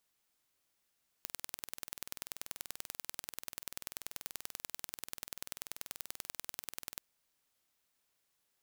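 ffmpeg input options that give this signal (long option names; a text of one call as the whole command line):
ffmpeg -f lavfi -i "aevalsrc='0.266*eq(mod(n,2141),0)*(0.5+0.5*eq(mod(n,4282),0))':duration=5.76:sample_rate=44100" out.wav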